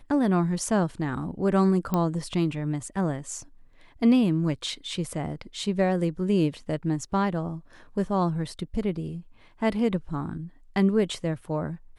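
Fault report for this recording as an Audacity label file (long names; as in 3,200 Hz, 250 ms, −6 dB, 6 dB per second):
1.940000	1.940000	click −13 dBFS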